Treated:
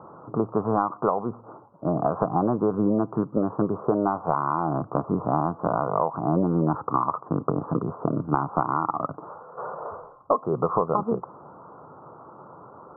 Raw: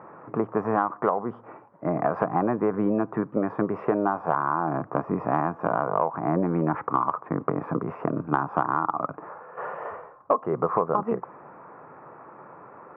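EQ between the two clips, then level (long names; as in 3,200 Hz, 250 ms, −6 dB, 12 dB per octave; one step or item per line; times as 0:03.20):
Butterworth low-pass 1,400 Hz 72 dB per octave
low-shelf EQ 110 Hz +10.5 dB
0.0 dB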